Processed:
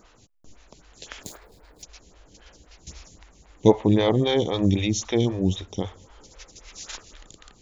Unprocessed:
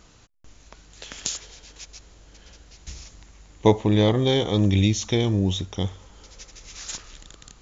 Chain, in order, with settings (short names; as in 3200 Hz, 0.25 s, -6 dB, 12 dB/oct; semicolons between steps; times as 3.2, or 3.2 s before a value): 1.23–1.83 median filter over 15 samples; photocell phaser 3.8 Hz; gain +2.5 dB